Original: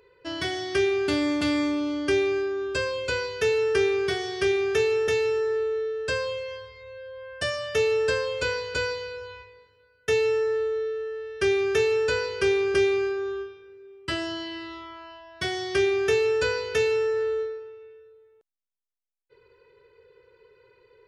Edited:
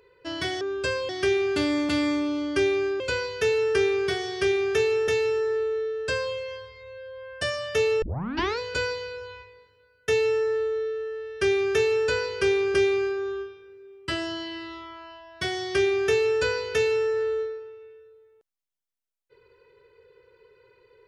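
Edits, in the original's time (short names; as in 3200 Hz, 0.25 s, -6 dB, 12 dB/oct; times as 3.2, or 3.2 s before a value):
2.52–3 move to 0.61
8.02 tape start 0.57 s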